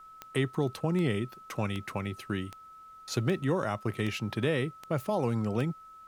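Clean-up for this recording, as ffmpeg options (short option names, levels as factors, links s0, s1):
-af "adeclick=t=4,bandreject=f=1300:w=30,agate=range=0.0891:threshold=0.00708"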